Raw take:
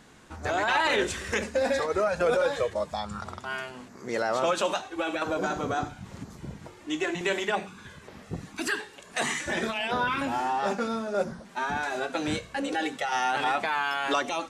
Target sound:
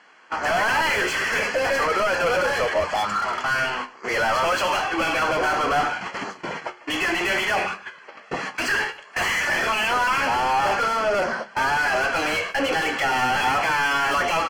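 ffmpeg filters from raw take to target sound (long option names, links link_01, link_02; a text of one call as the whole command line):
ffmpeg -i in.wav -filter_complex "[0:a]agate=range=-19dB:threshold=-42dB:ratio=16:detection=peak,highpass=frequency=1300:poles=1,adynamicsmooth=sensitivity=5:basefreq=5000,asplit=2[link_01][link_02];[link_02]highpass=frequency=720:poles=1,volume=35dB,asoftclip=type=tanh:threshold=-16dB[link_03];[link_01][link_03]amix=inputs=2:normalize=0,lowpass=frequency=2300:poles=1,volume=-6dB,flanger=delay=9.8:depth=6.4:regen=66:speed=0.64:shape=triangular,asuperstop=centerf=3700:order=8:qfactor=6.3,asplit=2[link_04][link_05];[link_05]aecho=0:1:151:0.0841[link_06];[link_04][link_06]amix=inputs=2:normalize=0,volume=6.5dB" -ar 48000 -c:a libvorbis -b:a 96k out.ogg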